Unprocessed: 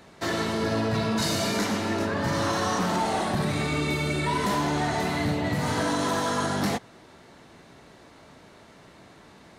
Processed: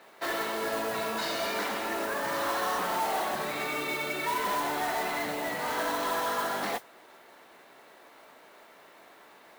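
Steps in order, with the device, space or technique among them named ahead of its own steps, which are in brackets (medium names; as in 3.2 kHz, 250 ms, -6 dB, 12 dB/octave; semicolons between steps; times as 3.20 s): carbon microphone (band-pass 490–3400 Hz; saturation -22.5 dBFS, distortion -19 dB; modulation noise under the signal 12 dB)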